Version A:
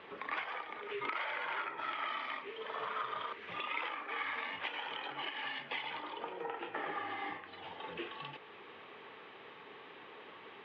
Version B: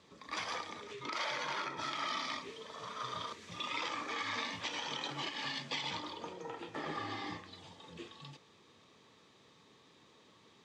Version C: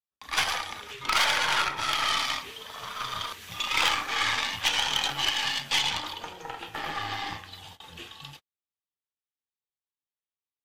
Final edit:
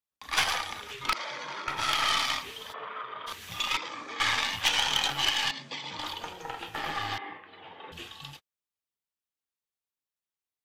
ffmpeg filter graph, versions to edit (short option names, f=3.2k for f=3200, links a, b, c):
-filter_complex "[1:a]asplit=3[a][b][c];[0:a]asplit=2[d][e];[2:a]asplit=6[f][g][h][i][j][k];[f]atrim=end=1.132[l];[a]atrim=start=1.128:end=1.682[m];[g]atrim=start=1.678:end=2.74[n];[d]atrim=start=2.72:end=3.28[o];[h]atrim=start=3.26:end=3.772[p];[b]atrim=start=3.768:end=4.202[q];[i]atrim=start=4.198:end=5.512[r];[c]atrim=start=5.508:end=5.992[s];[j]atrim=start=5.988:end=7.182[t];[e]atrim=start=7.178:end=7.922[u];[k]atrim=start=7.918[v];[l][m]acrossfade=d=0.004:c1=hsin:c2=hsin[w];[w][n]acrossfade=d=0.004:c1=hsin:c2=hsin[x];[x][o]acrossfade=d=0.02:c1=tri:c2=tri[y];[y][p]acrossfade=d=0.02:c1=tri:c2=tri[z];[z][q]acrossfade=d=0.004:c1=hsin:c2=hsin[aa];[aa][r]acrossfade=d=0.004:c1=hsin:c2=hsin[ab];[ab][s]acrossfade=d=0.004:c1=hsin:c2=hsin[ac];[ac][t]acrossfade=d=0.004:c1=hsin:c2=hsin[ad];[ad][u]acrossfade=d=0.004:c1=hsin:c2=hsin[ae];[ae][v]acrossfade=d=0.004:c1=hsin:c2=hsin"